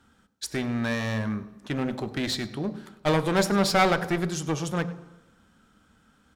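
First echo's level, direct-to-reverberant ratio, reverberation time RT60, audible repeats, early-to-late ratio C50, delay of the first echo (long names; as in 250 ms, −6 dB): −19.0 dB, 11.5 dB, 1.1 s, 1, 14.0 dB, 99 ms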